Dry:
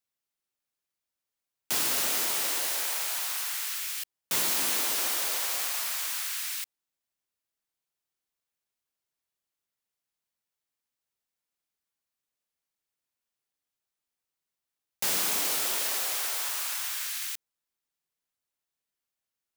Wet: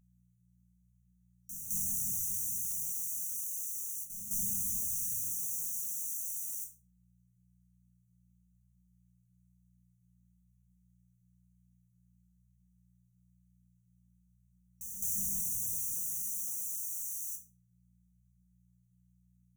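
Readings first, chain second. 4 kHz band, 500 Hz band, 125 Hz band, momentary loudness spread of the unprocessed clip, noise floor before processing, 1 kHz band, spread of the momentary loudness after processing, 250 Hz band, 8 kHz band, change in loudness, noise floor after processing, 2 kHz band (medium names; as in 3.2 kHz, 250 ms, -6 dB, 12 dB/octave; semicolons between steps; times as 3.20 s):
under -30 dB, under -40 dB, +4.5 dB, 7 LU, under -85 dBFS, under -40 dB, 7 LU, -5.5 dB, -4.5 dB, -6.0 dB, -70 dBFS, under -40 dB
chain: octave divider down 2 oct, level -2 dB; pre-echo 213 ms -12.5 dB; simulated room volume 400 m³, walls furnished, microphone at 2 m; mains buzz 60 Hz, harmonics 5, -63 dBFS 0 dB/octave; in parallel at +0.5 dB: compression, threshold -35 dBFS, peak gain reduction 13 dB; on the sum: flange 0.52 Hz, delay 4.7 ms, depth 9.7 ms, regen -67%; FFT band-reject 230–5700 Hz; trim -5 dB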